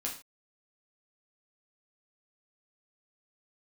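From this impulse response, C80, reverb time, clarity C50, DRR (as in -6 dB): 13.0 dB, no single decay rate, 8.0 dB, -2.5 dB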